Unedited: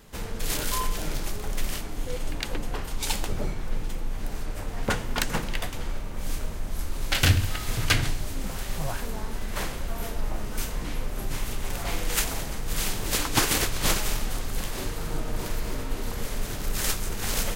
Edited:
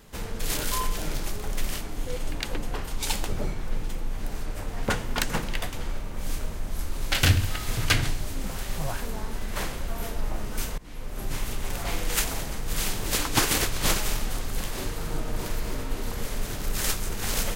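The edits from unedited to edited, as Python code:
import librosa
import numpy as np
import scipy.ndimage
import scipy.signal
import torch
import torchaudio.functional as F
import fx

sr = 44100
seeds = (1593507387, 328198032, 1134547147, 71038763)

y = fx.edit(x, sr, fx.fade_in_from(start_s=10.78, length_s=0.52, floor_db=-22.0), tone=tone)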